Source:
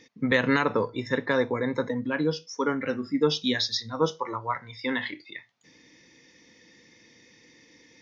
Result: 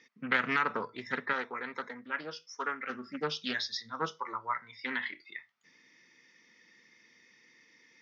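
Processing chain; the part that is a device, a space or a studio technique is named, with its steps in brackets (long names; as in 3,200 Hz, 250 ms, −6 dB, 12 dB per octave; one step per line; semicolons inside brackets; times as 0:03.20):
full-range speaker at full volume (highs frequency-modulated by the lows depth 0.34 ms; loudspeaker in its box 230–6,100 Hz, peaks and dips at 300 Hz −9 dB, 510 Hz −8 dB, 750 Hz −5 dB, 1,300 Hz +7 dB, 2,000 Hz +4 dB, 3,900 Hz −4 dB)
0:01.33–0:02.90: parametric band 120 Hz −11.5 dB 2.5 octaves
level −6 dB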